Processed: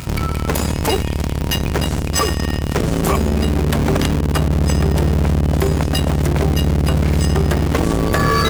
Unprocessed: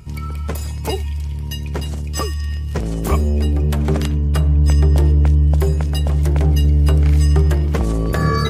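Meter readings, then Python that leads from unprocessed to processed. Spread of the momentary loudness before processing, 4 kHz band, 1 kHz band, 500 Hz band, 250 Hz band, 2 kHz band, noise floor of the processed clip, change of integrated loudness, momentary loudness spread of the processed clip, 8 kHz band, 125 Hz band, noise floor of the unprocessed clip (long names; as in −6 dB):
11 LU, +7.0 dB, +6.5 dB, +5.0 dB, +4.5 dB, +7.0 dB, −22 dBFS, 0.0 dB, 4 LU, +7.0 dB, −1.5 dB, −25 dBFS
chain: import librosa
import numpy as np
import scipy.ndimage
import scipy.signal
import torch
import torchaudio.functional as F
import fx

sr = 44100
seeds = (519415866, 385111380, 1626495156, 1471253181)

p1 = fx.octave_divider(x, sr, octaves=2, level_db=2.0)
p2 = fx.low_shelf(p1, sr, hz=300.0, db=-9.0)
p3 = fx.schmitt(p2, sr, flips_db=-29.5)
p4 = p2 + F.gain(torch.from_numpy(p3), -6.0).numpy()
p5 = scipy.signal.sosfilt(scipy.signal.butter(2, 63.0, 'highpass', fs=sr, output='sos'), p4)
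p6 = fx.dmg_crackle(p5, sr, seeds[0], per_s=98.0, level_db=-34.0)
p7 = fx.env_flatten(p6, sr, amount_pct=50)
y = F.gain(torch.from_numpy(p7), 2.0).numpy()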